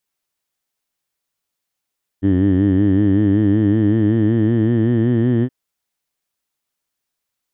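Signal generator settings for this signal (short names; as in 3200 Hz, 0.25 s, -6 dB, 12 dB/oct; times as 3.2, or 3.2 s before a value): formant vowel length 3.27 s, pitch 93.7 Hz, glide +4.5 st, F1 300 Hz, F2 1800 Hz, F3 3100 Hz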